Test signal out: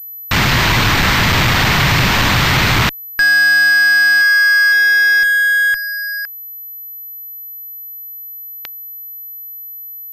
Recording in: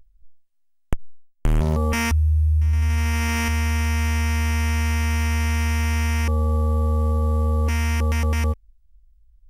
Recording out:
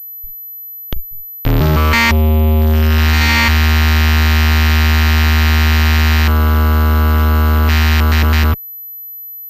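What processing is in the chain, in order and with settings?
graphic EQ with 10 bands 125 Hz +10 dB, 500 Hz −7 dB, 1,000 Hz +5 dB, 2,000 Hz +8 dB, 4,000 Hz +4 dB
fuzz pedal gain 31 dB, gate −40 dBFS
switching amplifier with a slow clock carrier 12,000 Hz
level +3.5 dB

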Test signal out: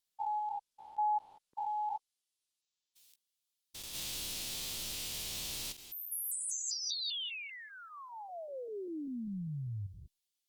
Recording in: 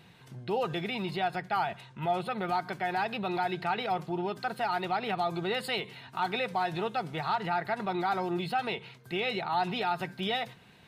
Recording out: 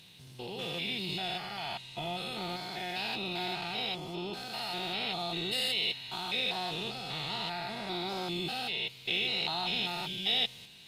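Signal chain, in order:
spectrum averaged block by block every 200 ms
high shelf with overshoot 2,300 Hz +13 dB, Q 1.5
level −3 dB
Opus 24 kbit/s 48,000 Hz

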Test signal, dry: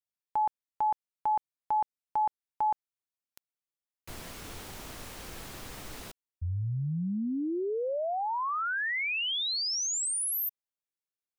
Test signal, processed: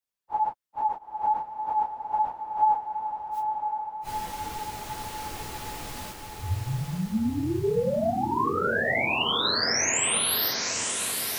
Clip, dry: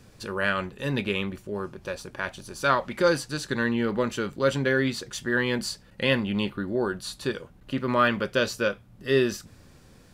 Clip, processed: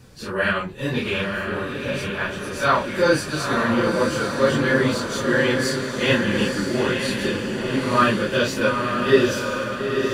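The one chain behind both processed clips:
random phases in long frames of 100 ms
on a send: feedback delay with all-pass diffusion 914 ms, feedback 57%, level −4 dB
on the sum: level +4 dB

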